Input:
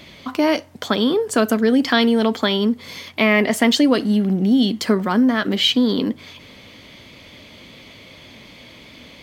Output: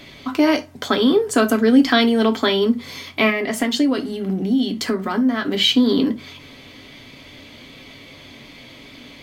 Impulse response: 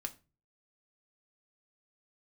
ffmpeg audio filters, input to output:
-filter_complex "[0:a]asettb=1/sr,asplit=3[s0][s1][s2];[s0]atrim=end=3.294[s3];[s1]atrim=start=3.29:end=5.54,asetpts=PTS-STARTPTS,afade=t=in:d=0.004:c=qsin,afade=t=out:st=2.246:d=0.004:c=qsin,acompressor=threshold=0.126:ratio=6[s4];[s2]atrim=start=5.536[s5];[s3][s4]acrossfade=d=0.004:c1=hsin:c2=qsin[s6];[s6][s5]acrossfade=d=0.004:c1=qsin:c2=hsin[s7];[1:a]atrim=start_sample=2205,atrim=end_sample=3969,asetrate=48510,aresample=44100[s8];[s7][s8]afir=irnorm=-1:irlink=0,volume=1.5"

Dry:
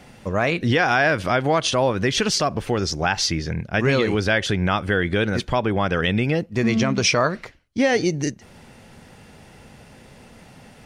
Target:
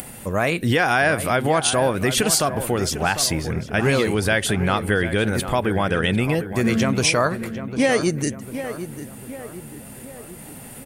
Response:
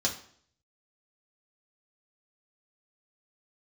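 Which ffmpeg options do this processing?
-filter_complex "[0:a]asplit=2[s0][s1];[s1]adelay=749,lowpass=f=2000:p=1,volume=0.299,asplit=2[s2][s3];[s3]adelay=749,lowpass=f=2000:p=1,volume=0.51,asplit=2[s4][s5];[s5]adelay=749,lowpass=f=2000:p=1,volume=0.51,asplit=2[s6][s7];[s7]adelay=749,lowpass=f=2000:p=1,volume=0.51,asplit=2[s8][s9];[s9]adelay=749,lowpass=f=2000:p=1,volume=0.51,asplit=2[s10][s11];[s11]adelay=749,lowpass=f=2000:p=1,volume=0.51[s12];[s0][s2][s4][s6][s8][s10][s12]amix=inputs=7:normalize=0,acompressor=mode=upward:threshold=0.02:ratio=2.5,aexciter=amount=9.1:drive=6:freq=8100"

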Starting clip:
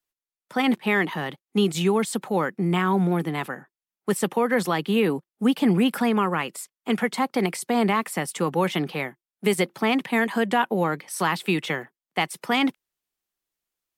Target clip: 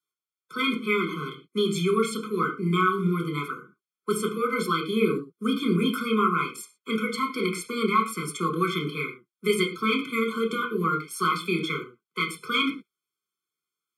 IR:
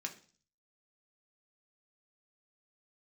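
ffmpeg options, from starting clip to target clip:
-filter_complex "[0:a]highpass=f=290:p=1[s0];[1:a]atrim=start_sample=2205,atrim=end_sample=3087,asetrate=24255,aresample=44100[s1];[s0][s1]afir=irnorm=-1:irlink=0,afftfilt=real='re*eq(mod(floor(b*sr/1024/510),2),0)':imag='im*eq(mod(floor(b*sr/1024/510),2),0)':win_size=1024:overlap=0.75"

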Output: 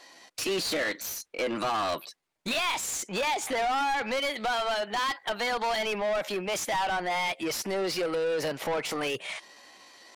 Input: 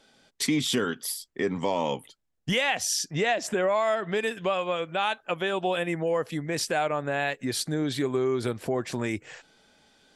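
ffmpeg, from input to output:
-filter_complex "[0:a]asplit=2[s0][s1];[s1]highpass=f=720:p=1,volume=20,asoftclip=type=tanh:threshold=0.224[s2];[s0][s2]amix=inputs=2:normalize=0,lowpass=f=3500:p=1,volume=0.501,asetrate=55563,aresample=44100,atempo=0.793701,volume=0.398"

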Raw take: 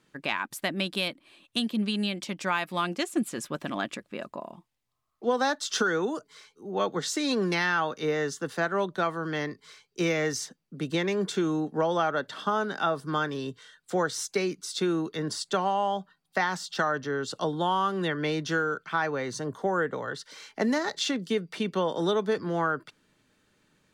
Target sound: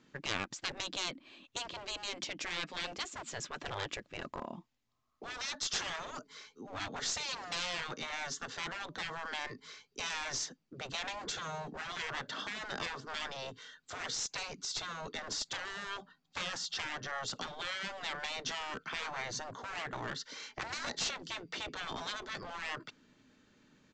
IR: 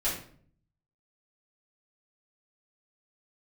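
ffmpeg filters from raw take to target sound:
-af "equalizer=f=250:w=3.3:g=8.5,aresample=16000,aeval=exprs='clip(val(0),-1,0.0251)':c=same,aresample=44100,afftfilt=real='re*lt(hypot(re,im),0.0708)':imag='im*lt(hypot(re,im),0.0708)':win_size=1024:overlap=0.75"

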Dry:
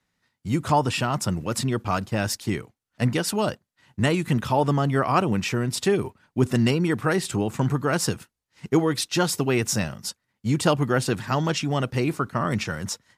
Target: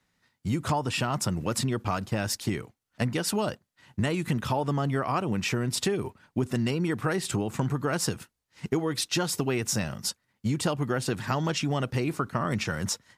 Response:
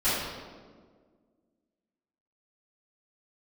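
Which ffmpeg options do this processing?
-af "acompressor=threshold=0.0501:ratio=6,volume=1.26"

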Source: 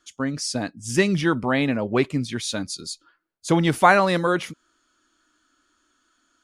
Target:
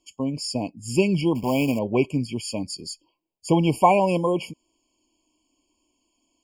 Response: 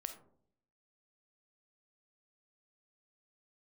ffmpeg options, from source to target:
-filter_complex "[0:a]asettb=1/sr,asplit=3[s0][s1][s2];[s0]atrim=end=1.354[s3];[s1]atrim=start=1.35:end=1.79,asetpts=PTS-STARTPTS,afade=t=in:d=0.004:c=qsin,afade=t=out:st=0.436:d=0.004:c=qsin,acrusher=bits=3:mode=log:mix=0:aa=0.000001[s4];[s2]atrim=start=1.786[s5];[s3][s4]acrossfade=d=0.004:c1=hsin:c2=qsin[s6];[s6][s5]acrossfade=d=0.004:c1=qsin:c2=hsin,afftfilt=real='re*eq(mod(floor(b*sr/1024/1100),2),0)':imag='im*eq(mod(floor(b*sr/1024/1100),2),0)':win_size=1024:overlap=0.75"

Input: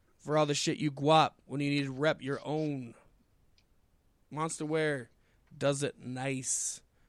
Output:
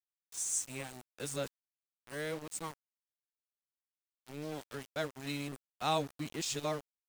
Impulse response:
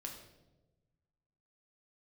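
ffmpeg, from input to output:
-af "areverse,aemphasis=mode=production:type=cd,aeval=exprs='val(0)*gte(abs(val(0)),0.0188)':c=same,volume=0.398"

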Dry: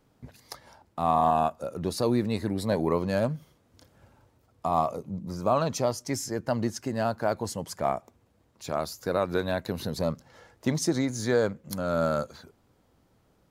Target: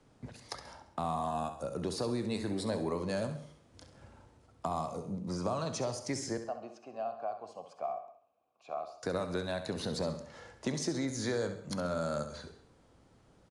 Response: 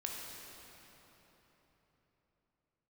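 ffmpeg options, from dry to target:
-filter_complex "[0:a]asettb=1/sr,asplit=3[s0][s1][s2];[s0]atrim=end=6.374[s3];[s1]atrim=start=6.37:end=9.03,asetpts=PTS-STARTPTS,afade=t=in:d=0.004:c=qsin,afade=t=out:st=2.656:d=0.004:c=qsin,asplit=3[s4][s5][s6];[s4]bandpass=f=730:t=q:w=8,volume=1[s7];[s5]bandpass=f=1090:t=q:w=8,volume=0.501[s8];[s6]bandpass=f=2440:t=q:w=8,volume=0.355[s9];[s7][s8][s9]amix=inputs=3:normalize=0[s10];[s2]atrim=start=9.026[s11];[s3][s10]acrossfade=d=0.004:c1=hsin:c2=qsin[s12];[s12][s11]acrossfade=d=0.004:c1=qsin:c2=hsin,acrossover=split=85|220|4900[s13][s14][s15][s16];[s13]acompressor=threshold=0.00141:ratio=4[s17];[s14]acompressor=threshold=0.00501:ratio=4[s18];[s15]acompressor=threshold=0.0158:ratio=4[s19];[s16]acompressor=threshold=0.00501:ratio=4[s20];[s17][s18][s19][s20]amix=inputs=4:normalize=0,aecho=1:1:67|134|201|268:0.282|0.113|0.0451|0.018,asplit=2[s21][s22];[1:a]atrim=start_sample=2205,afade=t=out:st=0.25:d=0.01,atrim=end_sample=11466[s23];[s22][s23]afir=irnorm=-1:irlink=0,volume=0.473[s24];[s21][s24]amix=inputs=2:normalize=0,aresample=22050,aresample=44100,volume=0.891"

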